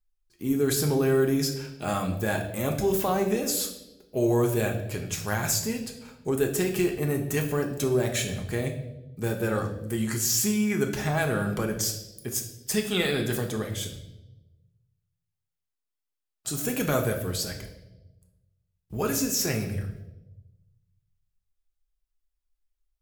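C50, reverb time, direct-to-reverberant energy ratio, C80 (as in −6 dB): 8.5 dB, 1.0 s, 2.5 dB, 11.0 dB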